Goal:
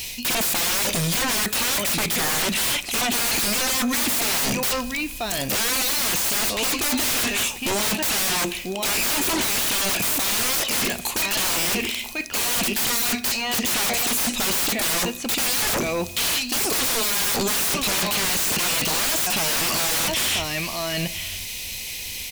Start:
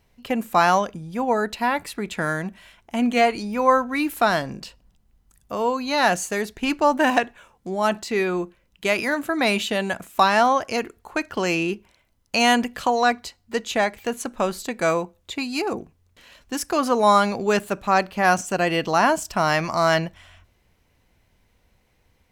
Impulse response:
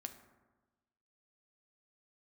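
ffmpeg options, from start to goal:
-filter_complex "[0:a]aexciter=amount=7.8:drive=8:freq=2200,asoftclip=type=tanh:threshold=-6.5dB,areverse,acompressor=threshold=-24dB:ratio=12,areverse,asplit=2[link_01][link_02];[link_02]adelay=991.3,volume=-12dB,highshelf=frequency=4000:gain=-22.3[link_03];[link_01][link_03]amix=inputs=2:normalize=0,aeval=exprs='0.178*sin(PI/2*8.91*val(0)/0.178)':channel_layout=same,aeval=exprs='val(0)+0.0126*sin(2*PI*2500*n/s)':channel_layout=same,asplit=2[link_04][link_05];[1:a]atrim=start_sample=2205[link_06];[link_05][link_06]afir=irnorm=-1:irlink=0,volume=-2.5dB[link_07];[link_04][link_07]amix=inputs=2:normalize=0,volume=-7.5dB"

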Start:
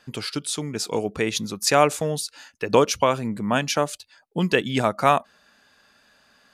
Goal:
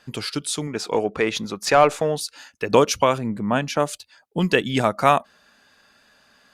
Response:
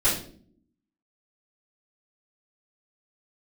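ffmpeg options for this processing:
-filter_complex "[0:a]asettb=1/sr,asplit=3[link_01][link_02][link_03];[link_01]atrim=end=0.674[link_04];[link_02]atrim=start=0.67:end=2.21,asetpts=PTS-STARTPTS,afade=type=in:duration=0.004:curve=qsin,afade=type=out:start_time=1.536:duration=0.004:curve=qsin,asplit=2[link_05][link_06];[link_06]highpass=frequency=720:poles=1,volume=12dB,asoftclip=type=tanh:threshold=-3.5dB[link_07];[link_05][link_07]amix=inputs=2:normalize=0,lowpass=frequency=1400:poles=1,volume=-6dB[link_08];[link_03]atrim=start=2.206[link_09];[link_04][link_08]acrossfade=duration=0.004:curve1=hsin:curve2=qsin[link_10];[link_10][link_09]acrossfade=duration=0.004:curve1=qsin:curve2=hsin,asettb=1/sr,asplit=3[link_11][link_12][link_13];[link_11]atrim=end=3.184[link_14];[link_12]atrim=start=3.18:end=3.8,asetpts=PTS-STARTPTS,afade=type=in:duration=0.004:curve=qsin,afade=type=out:start_time=0.616:duration=0.004:curve=qsin,highshelf=frequency=2800:gain=-9.5[link_15];[link_13]atrim=start=3.796[link_16];[link_14][link_15]acrossfade=duration=0.004:curve1=hsin:curve2=qsin[link_17];[link_17][link_16]acrossfade=duration=0.004:curve1=qsin:curve2=hsin,volume=1.5dB" -ar 48000 -c:a libopus -b:a 64k

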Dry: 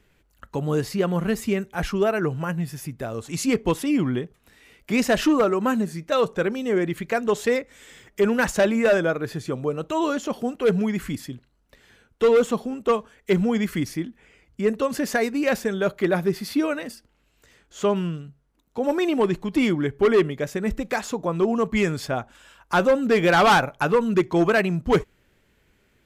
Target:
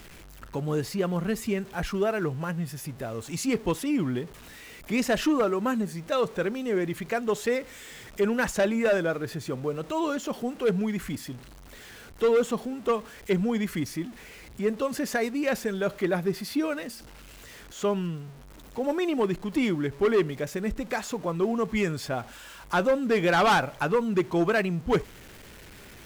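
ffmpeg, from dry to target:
ffmpeg -i in.wav -af "aeval=exprs='val(0)+0.5*0.0141*sgn(val(0))':channel_layout=same,volume=-5dB" out.wav

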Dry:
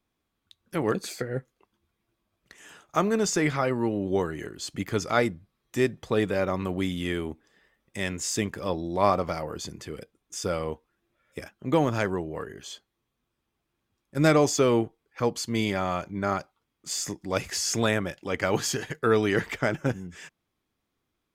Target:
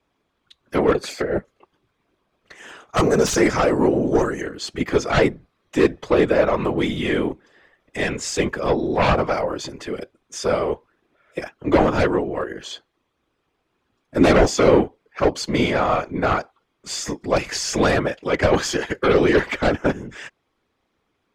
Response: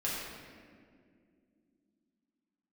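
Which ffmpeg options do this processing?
-filter_complex "[0:a]asettb=1/sr,asplit=3[link_01][link_02][link_03];[link_01]atrim=end=2.974[link_04];[link_02]atrim=start=2.97:end=4.41,asetpts=PTS-STARTPTS,afade=type=in:duration=0.004:curve=qsin,afade=type=out:start_time=1.436:duration=0.004:curve=qsin,highshelf=frequency=4600:width_type=q:width=3:gain=8[link_05];[link_03]atrim=start=4.406[link_06];[link_04][link_05]acrossfade=duration=0.004:curve1=hsin:curve2=qsin[link_07];[link_07][link_06]acrossfade=duration=0.004:curve1=qsin:curve2=hsin,acrossover=split=300[link_08][link_09];[link_09]aeval=exprs='0.562*sin(PI/2*5.62*val(0)/0.562)':channel_layout=same[link_10];[link_08][link_10]amix=inputs=2:normalize=0,aemphasis=mode=reproduction:type=bsi,afftfilt=real='hypot(re,im)*cos(2*PI*random(0))':imag='hypot(re,im)*sin(2*PI*random(1))':win_size=512:overlap=0.75,volume=-2dB"

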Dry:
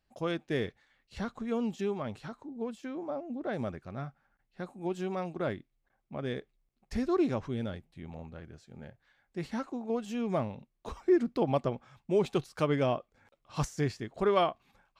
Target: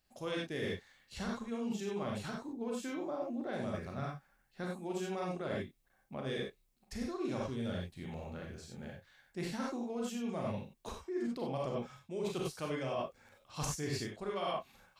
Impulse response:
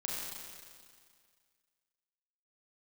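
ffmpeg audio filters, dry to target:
-filter_complex "[1:a]atrim=start_sample=2205,afade=type=out:start_time=0.15:duration=0.01,atrim=end_sample=7056[link_01];[0:a][link_01]afir=irnorm=-1:irlink=0,areverse,acompressor=threshold=-35dB:ratio=12,areverse,highshelf=frequency=4100:gain=11,volume=1dB"

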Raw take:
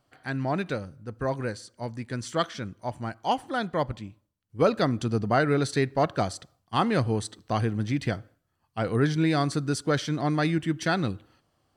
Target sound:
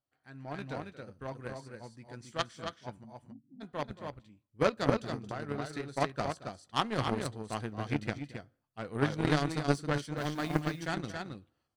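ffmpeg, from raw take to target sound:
ffmpeg -i in.wav -filter_complex "[0:a]asplit=3[link_01][link_02][link_03];[link_01]afade=type=out:start_time=3.03:duration=0.02[link_04];[link_02]asuperpass=centerf=180:order=8:qfactor=1.2,afade=type=in:start_time=3.03:duration=0.02,afade=type=out:start_time=3.6:duration=0.02[link_05];[link_03]afade=type=in:start_time=3.6:duration=0.02[link_06];[link_04][link_05][link_06]amix=inputs=3:normalize=0,asettb=1/sr,asplit=3[link_07][link_08][link_09];[link_07]atrim=end=4.964[link_10];[link_08]atrim=start=4.96:end=5.95,asetpts=PTS-STARTPTS,afade=type=in:duration=0.004:curve=qsin,afade=type=out:start_time=0.986:duration=0.004:curve=qsin,acompressor=threshold=-24dB:ratio=8[link_11];[link_09]atrim=start=5.946[link_12];[link_10][link_11]acrossfade=duration=0.004:curve1=hsin:curve2=qsin[link_13];[link_13][link_12]acrossfade=duration=0.004:curve1=qsin:curve2=hsin,asplit=3[link_14][link_15][link_16];[link_14]afade=type=out:start_time=10.16:duration=0.02[link_17];[link_15]acrusher=bits=8:dc=4:mix=0:aa=0.000001,afade=type=in:start_time=10.16:duration=0.02,afade=type=out:start_time=10.61:duration=0.02[link_18];[link_16]afade=type=in:start_time=10.61:duration=0.02[link_19];[link_17][link_18][link_19]amix=inputs=3:normalize=0,asplit=2[link_20][link_21];[link_21]adelay=14,volume=-12dB[link_22];[link_20][link_22]amix=inputs=2:normalize=0,asplit=2[link_23][link_24];[link_24]aecho=0:1:227.4|274.1:0.251|0.708[link_25];[link_23][link_25]amix=inputs=2:normalize=0,dynaudnorm=framelen=120:gausssize=7:maxgain=7.5dB,aeval=exprs='0.708*(cos(1*acos(clip(val(0)/0.708,-1,1)))-cos(1*PI/2))+0.2*(cos(3*acos(clip(val(0)/0.708,-1,1)))-cos(3*PI/2))':channel_layout=same,volume=-7dB" out.wav

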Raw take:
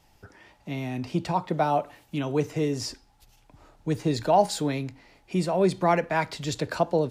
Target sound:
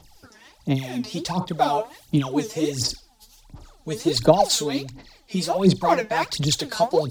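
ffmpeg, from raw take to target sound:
ffmpeg -i in.wav -filter_complex "[0:a]highshelf=frequency=3100:width_type=q:width=1.5:gain=7,aphaser=in_gain=1:out_gain=1:delay=4.7:decay=0.79:speed=1.4:type=sinusoidal,asettb=1/sr,asplit=3[link_01][link_02][link_03];[link_01]atrim=end=4.294[link_04];[link_02]atrim=start=4.29:end=6.34,asetpts=PTS-STARTPTS,afade=type=in:duration=0.004:curve=qsin,afade=type=out:start_time=2.046:duration=0.004:curve=qsin,equalizer=frequency=10000:width_type=o:width=0.28:gain=-6.5[link_05];[link_03]atrim=start=6.336[link_06];[link_04][link_05]acrossfade=duration=0.004:curve1=hsin:curve2=qsin[link_07];[link_07][link_06]acrossfade=duration=0.004:curve1=qsin:curve2=hsin,volume=-1dB" out.wav

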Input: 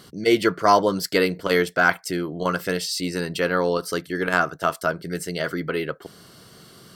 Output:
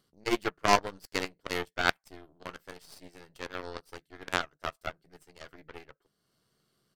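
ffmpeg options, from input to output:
ffmpeg -i in.wav -filter_complex "[0:a]asplit=2[link_01][link_02];[link_02]adelay=14,volume=-12dB[link_03];[link_01][link_03]amix=inputs=2:normalize=0,acompressor=mode=upward:threshold=-36dB:ratio=2.5,aeval=exprs='0.794*(cos(1*acos(clip(val(0)/0.794,-1,1)))-cos(1*PI/2))+0.224*(cos(3*acos(clip(val(0)/0.794,-1,1)))-cos(3*PI/2))+0.0447*(cos(4*acos(clip(val(0)/0.794,-1,1)))-cos(4*PI/2))+0.0141*(cos(7*acos(clip(val(0)/0.794,-1,1)))-cos(7*PI/2))':channel_layout=same,volume=-1dB" out.wav

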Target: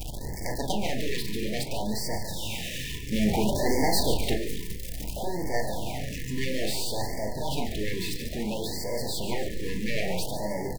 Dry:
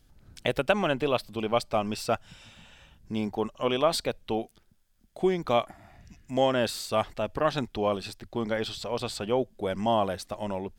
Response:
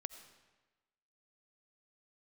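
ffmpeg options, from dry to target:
-filter_complex "[0:a]aeval=exprs='val(0)+0.5*0.0562*sgn(val(0))':channel_layout=same,flanger=delay=1.2:depth=8.8:regen=62:speed=0.22:shape=triangular,aeval=exprs='0.266*(cos(1*acos(clip(val(0)/0.266,-1,1)))-cos(1*PI/2))+0.0422*(cos(3*acos(clip(val(0)/0.266,-1,1)))-cos(3*PI/2))+0.0335*(cos(6*acos(clip(val(0)/0.266,-1,1)))-cos(6*PI/2))+0.0668*(cos(7*acos(clip(val(0)/0.266,-1,1)))-cos(7*PI/2))':channel_layout=same,asplit=7[link_01][link_02][link_03][link_04][link_05][link_06][link_07];[link_02]adelay=143,afreqshift=-65,volume=-10dB[link_08];[link_03]adelay=286,afreqshift=-130,volume=-15dB[link_09];[link_04]adelay=429,afreqshift=-195,volume=-20.1dB[link_10];[link_05]adelay=572,afreqshift=-260,volume=-25.1dB[link_11];[link_06]adelay=715,afreqshift=-325,volume=-30.1dB[link_12];[link_07]adelay=858,afreqshift=-390,volume=-35.2dB[link_13];[link_01][link_08][link_09][link_10][link_11][link_12][link_13]amix=inputs=7:normalize=0,asettb=1/sr,asplit=3[link_14][link_15][link_16];[link_14]atrim=end=3.124[link_17];[link_15]atrim=start=3.12:end=4.34,asetpts=PTS-STARTPTS,afade=type=in:duration=0.004:curve=qsin,afade=type=out:start_time=1.216:duration=0.004:curve=qsin,acontrast=78[link_18];[link_16]atrim=start=4.336[link_19];[link_17][link_18]acrossfade=duration=0.004:curve1=hsin:curve2=qsin[link_20];[link_20][link_19]acrossfade=duration=0.004:curve1=qsin:curve2=hsin,asuperstop=centerf=1300:order=20:qfactor=1.8,asplit=2[link_21][link_22];[link_22]adelay=23,volume=-12.5dB[link_23];[link_21][link_23]amix=inputs=2:normalize=0,asplit=2[link_24][link_25];[1:a]atrim=start_sample=2205,lowpass=2800,adelay=38[link_26];[link_25][link_26]afir=irnorm=-1:irlink=0,volume=-0.5dB[link_27];[link_24][link_27]amix=inputs=2:normalize=0,afftfilt=real='re*(1-between(b*sr/1024,690*pow(3200/690,0.5+0.5*sin(2*PI*0.59*pts/sr))/1.41,690*pow(3200/690,0.5+0.5*sin(2*PI*0.59*pts/sr))*1.41))':imag='im*(1-between(b*sr/1024,690*pow(3200/690,0.5+0.5*sin(2*PI*0.59*pts/sr))/1.41,690*pow(3200/690,0.5+0.5*sin(2*PI*0.59*pts/sr))*1.41))':win_size=1024:overlap=0.75,volume=-2dB"

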